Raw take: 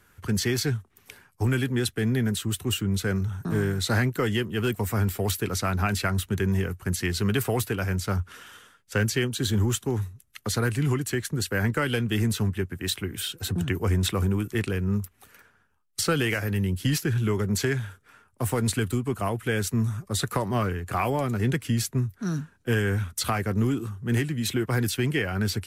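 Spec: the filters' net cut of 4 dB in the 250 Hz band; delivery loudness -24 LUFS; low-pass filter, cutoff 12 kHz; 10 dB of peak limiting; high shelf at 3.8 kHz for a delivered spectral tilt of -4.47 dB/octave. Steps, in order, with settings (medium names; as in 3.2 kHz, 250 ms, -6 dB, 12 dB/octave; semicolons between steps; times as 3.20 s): low-pass 12 kHz; peaking EQ 250 Hz -5.5 dB; treble shelf 3.8 kHz +5.5 dB; trim +4.5 dB; peak limiter -13.5 dBFS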